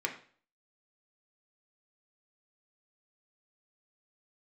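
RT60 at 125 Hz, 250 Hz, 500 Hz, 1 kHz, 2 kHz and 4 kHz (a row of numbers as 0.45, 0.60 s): 0.50, 0.45, 0.45, 0.45, 0.45, 0.45 s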